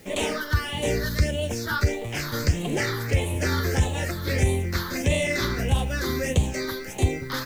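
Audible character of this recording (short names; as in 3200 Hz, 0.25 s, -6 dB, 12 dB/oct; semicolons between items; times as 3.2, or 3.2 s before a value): phasing stages 6, 1.6 Hz, lowest notch 700–1400 Hz; a quantiser's noise floor 10-bit, dither triangular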